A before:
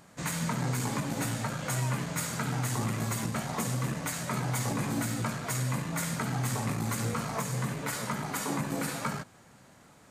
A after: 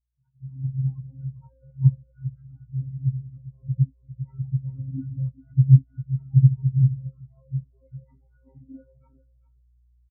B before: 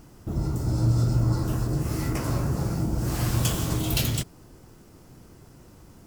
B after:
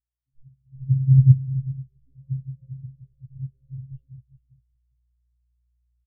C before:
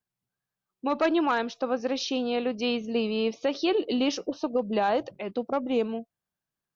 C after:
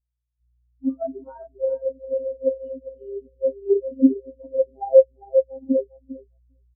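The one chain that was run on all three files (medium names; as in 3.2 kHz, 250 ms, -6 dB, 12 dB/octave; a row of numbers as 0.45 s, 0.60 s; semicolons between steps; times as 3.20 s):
phase randomisation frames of 100 ms; peaking EQ 1.1 kHz -4.5 dB 0.3 oct; spectral noise reduction 7 dB; robot voice 133 Hz; hum 60 Hz, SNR 11 dB; distance through air 210 m; on a send: feedback delay 401 ms, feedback 38%, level -3.5 dB; on the sum: spectral contrast expander 4:1; peak normalisation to -3 dBFS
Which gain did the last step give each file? +16.5 dB, +9.5 dB, +10.0 dB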